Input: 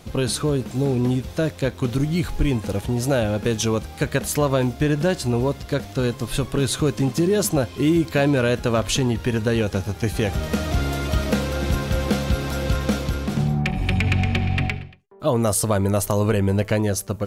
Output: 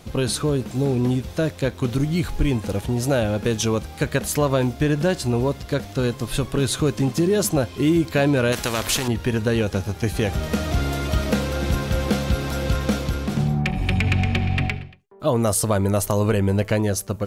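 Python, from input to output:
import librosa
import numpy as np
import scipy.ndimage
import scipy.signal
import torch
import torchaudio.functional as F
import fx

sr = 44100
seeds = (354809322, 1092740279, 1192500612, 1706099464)

y = fx.spectral_comp(x, sr, ratio=2.0, at=(8.52, 9.08))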